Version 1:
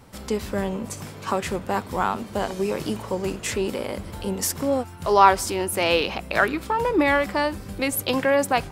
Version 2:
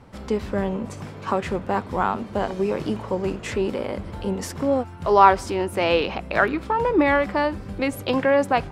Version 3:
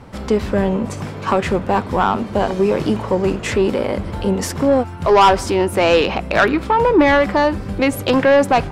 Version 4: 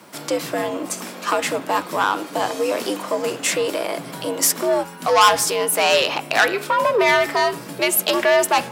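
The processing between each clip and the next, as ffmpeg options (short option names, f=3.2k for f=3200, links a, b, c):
-af "aemphasis=mode=reproduction:type=75fm,volume=1dB"
-af "asoftclip=type=tanh:threshold=-14dB,volume=8.5dB"
-af "afreqshift=84,aemphasis=mode=production:type=riaa,bandreject=f=138.5:t=h:w=4,bandreject=f=277:t=h:w=4,bandreject=f=415.5:t=h:w=4,bandreject=f=554:t=h:w=4,bandreject=f=692.5:t=h:w=4,bandreject=f=831:t=h:w=4,bandreject=f=969.5:t=h:w=4,bandreject=f=1.108k:t=h:w=4,bandreject=f=1.2465k:t=h:w=4,bandreject=f=1.385k:t=h:w=4,bandreject=f=1.5235k:t=h:w=4,bandreject=f=1.662k:t=h:w=4,bandreject=f=1.8005k:t=h:w=4,bandreject=f=1.939k:t=h:w=4,bandreject=f=2.0775k:t=h:w=4,bandreject=f=2.216k:t=h:w=4,bandreject=f=2.3545k:t=h:w=4,bandreject=f=2.493k:t=h:w=4,bandreject=f=2.6315k:t=h:w=4,bandreject=f=2.77k:t=h:w=4,bandreject=f=2.9085k:t=h:w=4,bandreject=f=3.047k:t=h:w=4,bandreject=f=3.1855k:t=h:w=4,bandreject=f=3.324k:t=h:w=4,bandreject=f=3.4625k:t=h:w=4,bandreject=f=3.601k:t=h:w=4,bandreject=f=3.7395k:t=h:w=4,bandreject=f=3.878k:t=h:w=4,volume=-2.5dB"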